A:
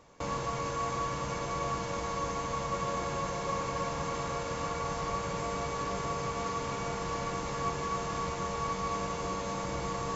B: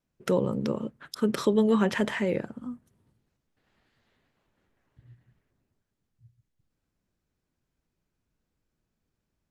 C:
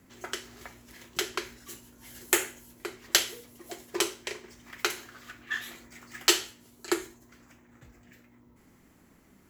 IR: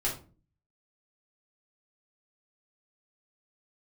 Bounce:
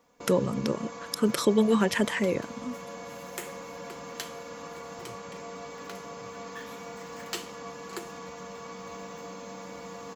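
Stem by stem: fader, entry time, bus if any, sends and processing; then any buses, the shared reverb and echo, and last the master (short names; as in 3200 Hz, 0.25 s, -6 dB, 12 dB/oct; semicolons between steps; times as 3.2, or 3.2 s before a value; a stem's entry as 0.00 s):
-9.0 dB, 0.00 s, no send, HPF 100 Hz 24 dB/oct; comb 4.1 ms, depth 92%
+1.0 dB, 0.00 s, no send, reverb removal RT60 0.51 s; high shelf 5200 Hz +10.5 dB
-10.0 dB, 1.05 s, no send, short-mantissa float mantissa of 2-bit; three-band squash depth 40%; auto duck -7 dB, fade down 1.20 s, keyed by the second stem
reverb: off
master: dry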